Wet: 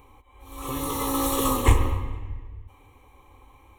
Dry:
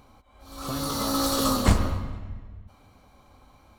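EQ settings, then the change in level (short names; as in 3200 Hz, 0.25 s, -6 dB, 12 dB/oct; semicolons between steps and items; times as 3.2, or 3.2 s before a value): fixed phaser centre 970 Hz, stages 8; +4.5 dB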